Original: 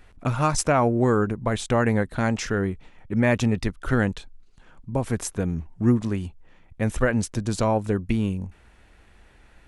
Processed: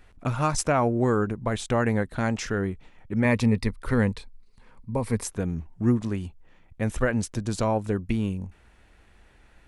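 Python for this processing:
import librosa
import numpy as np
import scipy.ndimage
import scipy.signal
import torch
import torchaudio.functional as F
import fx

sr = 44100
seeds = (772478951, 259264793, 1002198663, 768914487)

y = fx.ripple_eq(x, sr, per_octave=0.92, db=8, at=(3.24, 5.24))
y = y * 10.0 ** (-2.5 / 20.0)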